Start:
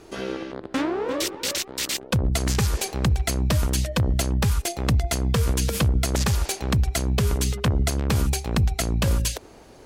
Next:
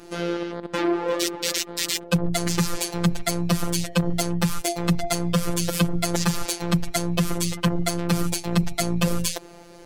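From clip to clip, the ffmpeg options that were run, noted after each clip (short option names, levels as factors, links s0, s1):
-filter_complex "[0:a]afftfilt=real='hypot(re,im)*cos(PI*b)':imag='0':win_size=1024:overlap=0.75,asplit=2[s0][s1];[s1]aeval=exprs='clip(val(0),-1,0.119)':c=same,volume=0.562[s2];[s0][s2]amix=inputs=2:normalize=0,volume=1.26"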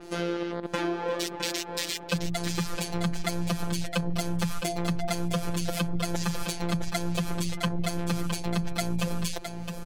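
-filter_complex "[0:a]acompressor=threshold=0.0631:ratio=6,asplit=2[s0][s1];[s1]aecho=0:1:663:0.422[s2];[s0][s2]amix=inputs=2:normalize=0,adynamicequalizer=threshold=0.00447:dfrequency=5300:dqfactor=0.7:tfrequency=5300:tqfactor=0.7:attack=5:release=100:ratio=0.375:range=2.5:mode=cutabove:tftype=highshelf"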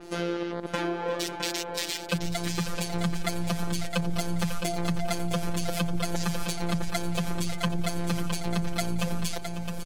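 -af "aecho=1:1:547|1094|1641|2188:0.237|0.0972|0.0399|0.0163"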